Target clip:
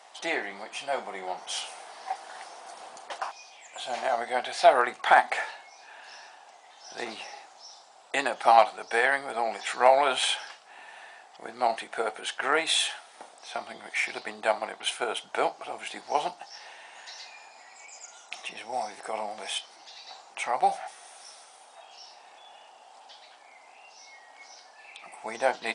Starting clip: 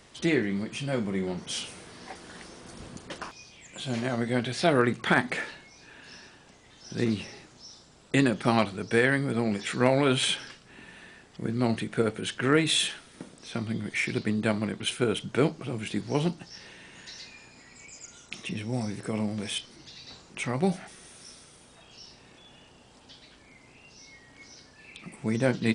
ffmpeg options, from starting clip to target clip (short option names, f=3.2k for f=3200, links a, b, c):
-af "highpass=f=760:t=q:w=4.9" -ar 32000 -c:a libmp3lame -b:a 56k